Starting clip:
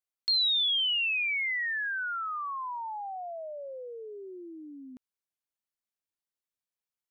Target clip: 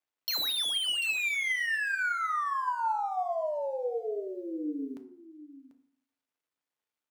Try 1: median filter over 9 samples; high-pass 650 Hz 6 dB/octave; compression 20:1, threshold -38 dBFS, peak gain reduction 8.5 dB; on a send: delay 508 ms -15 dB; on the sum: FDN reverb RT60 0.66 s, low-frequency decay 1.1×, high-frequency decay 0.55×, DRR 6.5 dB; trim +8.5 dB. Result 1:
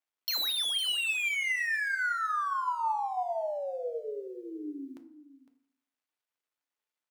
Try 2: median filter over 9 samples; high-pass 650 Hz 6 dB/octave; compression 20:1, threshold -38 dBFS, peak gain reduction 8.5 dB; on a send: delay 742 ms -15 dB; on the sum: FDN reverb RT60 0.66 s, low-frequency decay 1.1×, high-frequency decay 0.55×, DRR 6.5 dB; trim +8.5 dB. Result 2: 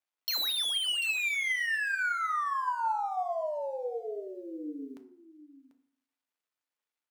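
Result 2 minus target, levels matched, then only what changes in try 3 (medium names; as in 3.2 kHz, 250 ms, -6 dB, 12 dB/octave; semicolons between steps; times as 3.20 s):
250 Hz band -4.5 dB
change: high-pass 280 Hz 6 dB/octave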